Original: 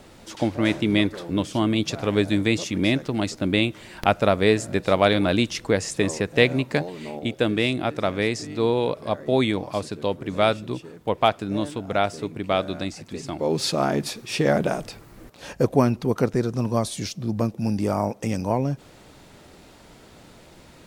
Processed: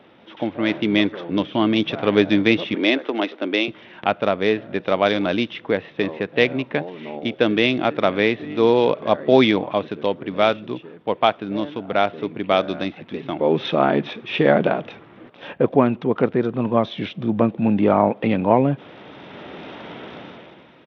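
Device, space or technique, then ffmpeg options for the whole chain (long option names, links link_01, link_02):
Bluetooth headset: -filter_complex "[0:a]asettb=1/sr,asplit=3[link_01][link_02][link_03];[link_01]atrim=end=2.744[link_04];[link_02]atrim=start=2.74:end=3.68,asetpts=PTS-STARTPTS,afade=type=in:duration=0.004:curve=qsin,afade=type=out:start_time=0.936:duration=0.004:curve=qsin,highpass=frequency=290:width=0.5412,highpass=frequency=290:width=1.3066[link_05];[link_03]atrim=start=3.676[link_06];[link_04][link_05]acrossfade=duration=0.004:curve1=hsin:curve2=qsin[link_07];[link_07][link_06]acrossfade=duration=0.004:curve1=qsin:curve2=hsin,highpass=180,dynaudnorm=framelen=130:gausssize=11:maxgain=16dB,aresample=8000,aresample=44100,volume=-1dB" -ar 32000 -c:a sbc -b:a 64k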